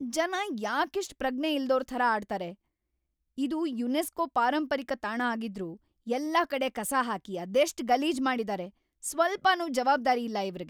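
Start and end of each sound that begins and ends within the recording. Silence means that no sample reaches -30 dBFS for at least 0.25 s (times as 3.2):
3.39–5.64
6.09–8.65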